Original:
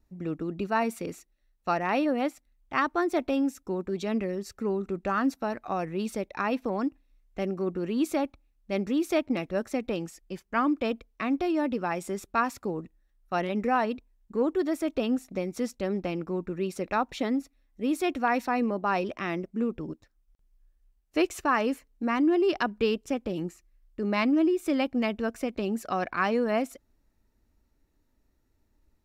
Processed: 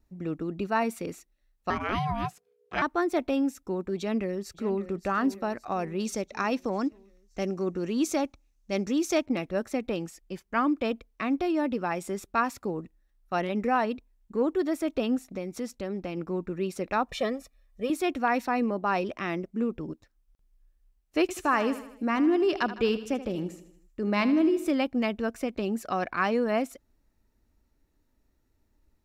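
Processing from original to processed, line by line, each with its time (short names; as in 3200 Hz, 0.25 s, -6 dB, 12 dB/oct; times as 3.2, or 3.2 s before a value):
1.7–2.82 ring modulator 450 Hz
3.97–4.89 echo throw 0.57 s, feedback 55%, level -13.5 dB
6–9.26 bell 6200 Hz +11.5 dB 0.72 oct
15.31–16.17 compressor 1.5:1, threshold -35 dBFS
17.07–17.9 comb 1.7 ms, depth 95%
21.21–24.71 feedback echo 78 ms, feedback 53%, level -13.5 dB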